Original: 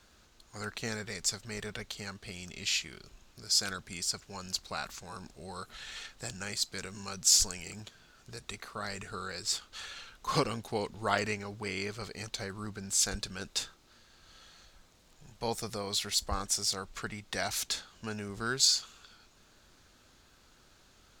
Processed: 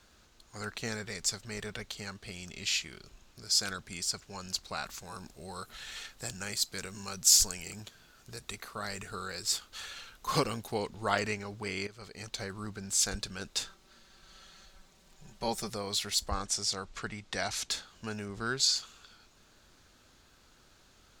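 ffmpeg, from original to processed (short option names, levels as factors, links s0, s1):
-filter_complex "[0:a]asettb=1/sr,asplit=3[s0][s1][s2];[s0]atrim=end=4.934[s3];[s1]atrim=start=4.93:end=10.75,asetpts=PTS-STARTPTS,afade=t=in:d=0.004:c=qsin,afade=t=out:st=5.816:d=0.004:c=qsin,equalizer=f=14000:w=0.83:g=9[s4];[s2]atrim=start=10.746[s5];[s3][s4]acrossfade=d=0.004:c1=hsin:c2=qsin[s6];[s6][s5]acrossfade=d=0.004:c1=qsin:c2=hsin,asettb=1/sr,asplit=3[s7][s8][s9];[s7]atrim=end=13.654[s10];[s8]atrim=start=13.65:end=15.69,asetpts=PTS-STARTPTS,afade=t=in:d=0.004:c=qsin,afade=t=out:st=2.036:d=0.004:c=qsin,aecho=1:1:5.2:0.59,atrim=end_sample=89964[s11];[s9]atrim=start=15.686[s12];[s10][s11]acrossfade=d=0.004:c1=hsin:c2=qsin[s13];[s13][s12]acrossfade=d=0.004:c1=qsin:c2=hsin,asettb=1/sr,asplit=3[s14][s15][s16];[s14]atrim=end=16.304[s17];[s15]atrim=start=16.3:end=17.7,asetpts=PTS-STARTPTS,afade=t=in:d=0.004:c=qsin,afade=t=out:st=1.396:d=0.004:c=qsin,lowpass=8500[s18];[s16]atrim=start=17.696[s19];[s17][s18]acrossfade=d=0.004:c1=hsin:c2=qsin[s20];[s20][s19]acrossfade=d=0.004:c1=qsin:c2=hsin,asettb=1/sr,asplit=3[s21][s22][s23];[s21]atrim=end=18.254[s24];[s22]atrim=start=18.25:end=18.76,asetpts=PTS-STARTPTS,afade=t=in:d=0.004:c=qsin,afade=t=out:st=0.506:d=0.004:c=qsin,highshelf=f=9900:g=-11[s25];[s23]atrim=start=18.756[s26];[s24][s25]acrossfade=d=0.004:c1=hsin:c2=qsin[s27];[s27][s26]acrossfade=d=0.004:c1=qsin:c2=hsin,asplit=2[s28][s29];[s28]atrim=end=11.87,asetpts=PTS-STARTPTS,afade=t=out:st=11.866:d=0.004:c=hsin:silence=0.211349[s30];[s29]atrim=start=11.87,asetpts=PTS-STARTPTS,afade=t=in:d=0.52:silence=0.211349[s31];[s30][s31]concat=n=2:v=0:a=1"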